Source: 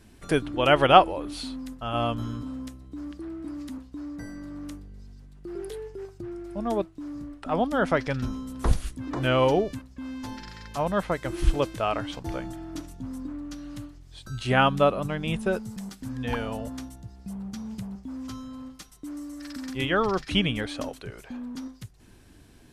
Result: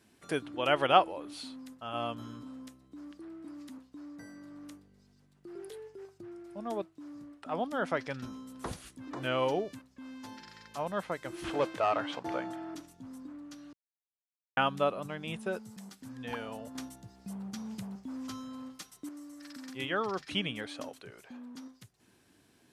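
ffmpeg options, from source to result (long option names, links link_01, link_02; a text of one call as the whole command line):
ffmpeg -i in.wav -filter_complex "[0:a]asettb=1/sr,asplit=3[link_01][link_02][link_03];[link_01]atrim=end=11.444[link_04];[link_02]atrim=start=11.44:end=12.75,asetpts=PTS-STARTPTS,afade=type=in:duration=0.004:curve=qsin,afade=type=out:start_time=1.306:duration=0.004:curve=qsin,asplit=2[link_05][link_06];[link_06]highpass=frequency=720:poles=1,volume=20dB,asoftclip=type=tanh:threshold=-8.5dB[link_07];[link_05][link_07]amix=inputs=2:normalize=0,lowpass=frequency=1200:poles=1,volume=-6dB[link_08];[link_03]atrim=start=12.746[link_09];[link_04][link_08]acrossfade=duration=0.004:curve1=hsin:curve2=qsin[link_10];[link_10][link_09]acrossfade=duration=0.004:curve1=qsin:curve2=hsin,asettb=1/sr,asplit=3[link_11][link_12][link_13];[link_11]atrim=end=16.754[link_14];[link_12]atrim=start=16.75:end=19.09,asetpts=PTS-STARTPTS,afade=type=in:duration=0.004:curve=qsin,afade=type=out:start_time=2.336:duration=0.004:curve=qsin,acontrast=57[link_15];[link_13]atrim=start=19.086[link_16];[link_14][link_15]acrossfade=duration=0.004:curve1=hsin:curve2=qsin[link_17];[link_17][link_16]acrossfade=duration=0.004:curve1=qsin:curve2=hsin,asplit=3[link_18][link_19][link_20];[link_18]atrim=end=13.73,asetpts=PTS-STARTPTS,afade=type=out:start_time=13.726:duration=0.004:curve=hsin[link_21];[link_19]atrim=start=13.73:end=14.57,asetpts=PTS-STARTPTS,volume=0[link_22];[link_20]atrim=start=14.57,asetpts=PTS-STARTPTS,afade=type=in:duration=0.004:curve=hsin[link_23];[link_21][link_22][link_23]concat=n=3:v=0:a=1,highpass=130,lowshelf=frequency=340:gain=-4.5,volume=-7dB" out.wav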